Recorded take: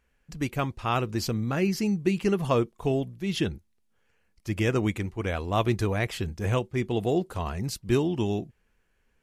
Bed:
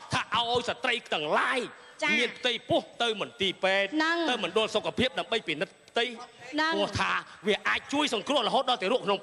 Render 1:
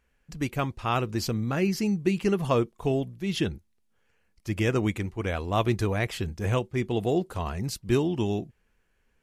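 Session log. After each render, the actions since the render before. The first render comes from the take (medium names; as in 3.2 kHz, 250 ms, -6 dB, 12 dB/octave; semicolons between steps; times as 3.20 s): no audible change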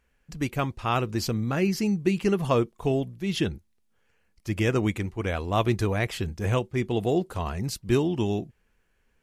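trim +1 dB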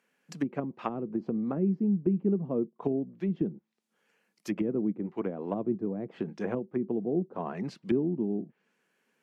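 steep high-pass 170 Hz 36 dB/octave; low-pass that closes with the level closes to 320 Hz, closed at -24.5 dBFS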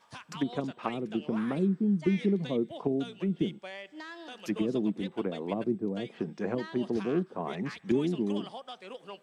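add bed -17.5 dB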